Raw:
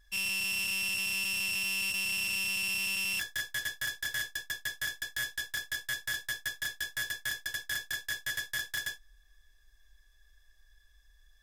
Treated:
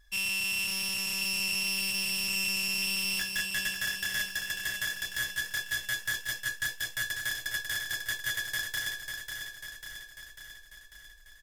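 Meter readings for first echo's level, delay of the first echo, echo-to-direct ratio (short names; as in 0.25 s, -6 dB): -6.0 dB, 0.545 s, -4.0 dB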